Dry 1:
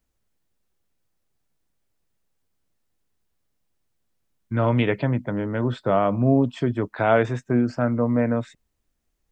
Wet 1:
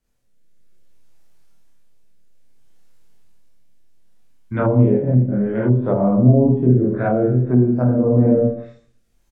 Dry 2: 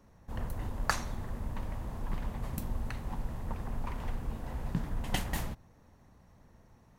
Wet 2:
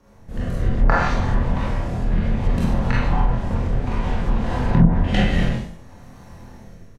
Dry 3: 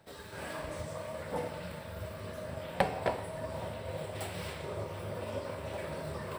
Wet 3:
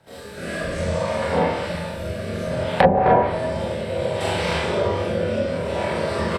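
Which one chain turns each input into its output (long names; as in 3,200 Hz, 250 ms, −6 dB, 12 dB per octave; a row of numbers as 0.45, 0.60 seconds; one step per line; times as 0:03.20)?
rotating-speaker cabinet horn 0.6 Hz
double-tracking delay 24 ms −3.5 dB
four-comb reverb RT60 0.55 s, combs from 32 ms, DRR −4.5 dB
automatic gain control gain up to 5 dB
treble cut that deepens with the level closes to 430 Hz, closed at −13.5 dBFS
normalise the peak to −1.5 dBFS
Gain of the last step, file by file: +1.5, +7.5, +6.5 decibels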